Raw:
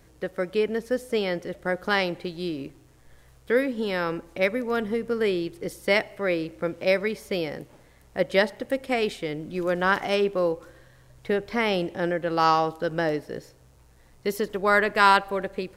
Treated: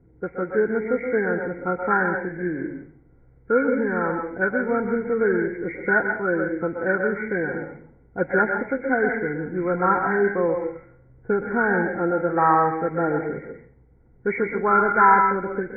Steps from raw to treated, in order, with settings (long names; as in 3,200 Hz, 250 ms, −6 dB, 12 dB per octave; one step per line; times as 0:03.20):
hearing-aid frequency compression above 1,300 Hz 4 to 1
low-pass that shuts in the quiet parts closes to 390 Hz, open at −22 dBFS
notch comb filter 600 Hz
convolution reverb RT60 0.40 s, pre-delay 117 ms, DRR 5 dB
level +3 dB